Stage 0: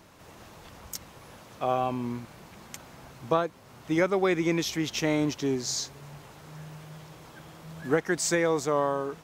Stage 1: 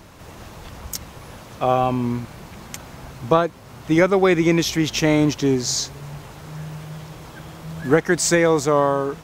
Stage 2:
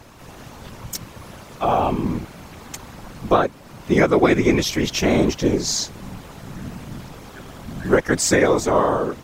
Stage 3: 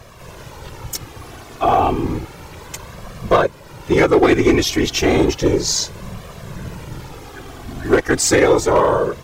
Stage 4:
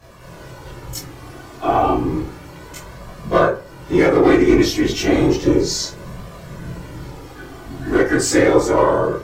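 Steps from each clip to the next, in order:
low-shelf EQ 100 Hz +9.5 dB; level +8 dB
random phases in short frames
hard clipping −11 dBFS, distortion −16 dB; flanger 0.32 Hz, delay 1.7 ms, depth 1.1 ms, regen −20%; level +7 dB
convolution reverb RT60 0.35 s, pre-delay 12 ms, DRR −9.5 dB; level −11.5 dB

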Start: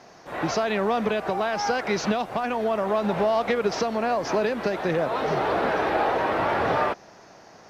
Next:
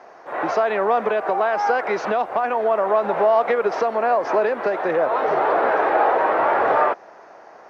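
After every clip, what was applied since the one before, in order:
three-way crossover with the lows and the highs turned down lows −20 dB, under 360 Hz, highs −17 dB, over 2,000 Hz
level +7 dB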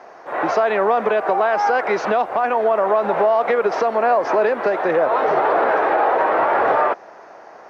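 brickwall limiter −11.5 dBFS, peak gain reduction 4.5 dB
level +3 dB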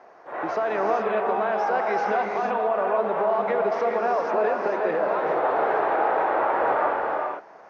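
high-shelf EQ 3,900 Hz −7 dB
reverb whose tail is shaped and stops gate 480 ms rising, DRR 0.5 dB
level −8 dB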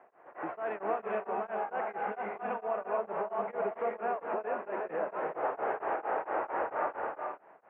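Butterworth low-pass 2,900 Hz 48 dB per octave
tremolo along a rectified sine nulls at 4.4 Hz
level −8 dB

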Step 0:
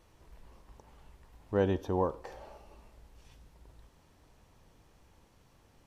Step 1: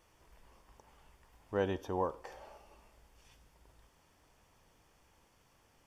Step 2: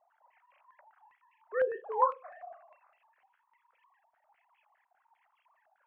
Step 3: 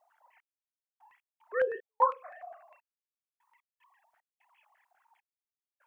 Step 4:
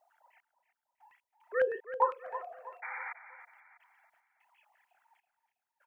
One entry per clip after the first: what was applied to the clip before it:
low-shelf EQ 490 Hz −8.5 dB; notch filter 4,000 Hz, Q 7.7
three sine waves on the formant tracks; flutter between parallel walls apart 6 metres, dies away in 0.2 s; low-pass on a step sequencer 9.9 Hz 770–2,500 Hz
high-shelf EQ 2,300 Hz +9 dB; gate pattern "xx...x.xx.xx" 75 BPM −60 dB
sound drawn into the spectrogram noise, 0:02.82–0:03.13, 760–2,400 Hz −40 dBFS; notch filter 1,100 Hz, Q 7.1; repeating echo 324 ms, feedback 40%, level −12.5 dB

